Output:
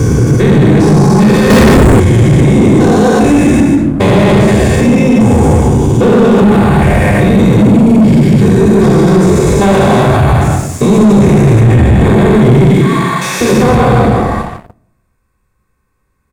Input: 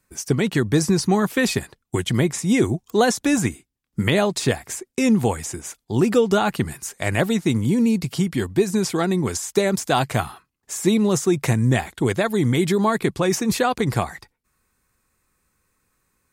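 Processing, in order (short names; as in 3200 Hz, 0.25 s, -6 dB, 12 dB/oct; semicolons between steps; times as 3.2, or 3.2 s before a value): stepped spectrum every 0.4 s; 12.66–13.41 HPF 1500 Hz 12 dB/oct; echo 0.149 s -7 dB; reverb RT60 0.80 s, pre-delay 3 ms, DRR -1.5 dB; 1.5–2 sample leveller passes 5; 6.8–7.38 bell 6800 Hz -7 dB 0.54 oct; sample leveller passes 3; high shelf 2100 Hz -10.5 dB; maximiser +9 dB; gain -1 dB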